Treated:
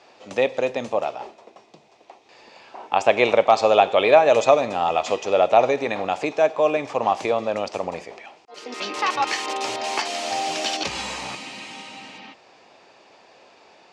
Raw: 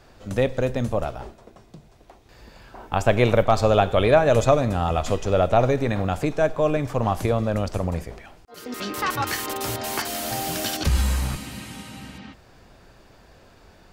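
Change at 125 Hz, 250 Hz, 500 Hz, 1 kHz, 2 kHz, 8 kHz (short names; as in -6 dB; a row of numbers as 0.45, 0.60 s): -18.0, -5.0, +2.5, +4.5, +3.0, -1.5 dB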